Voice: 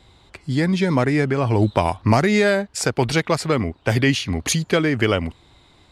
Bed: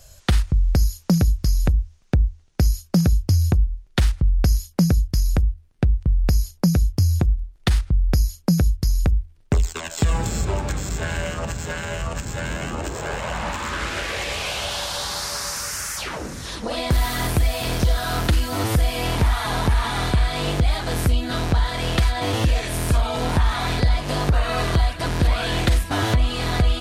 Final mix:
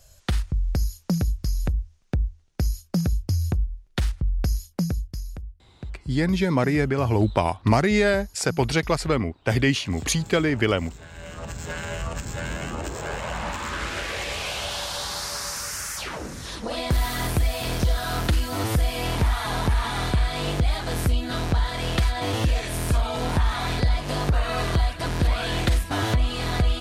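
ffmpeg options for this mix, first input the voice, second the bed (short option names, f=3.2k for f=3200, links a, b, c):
-filter_complex "[0:a]adelay=5600,volume=-3dB[a];[1:a]volume=8.5dB,afade=t=out:st=4.69:d=0.68:silence=0.266073,afade=t=in:st=11.13:d=0.64:silence=0.188365[b];[a][b]amix=inputs=2:normalize=0"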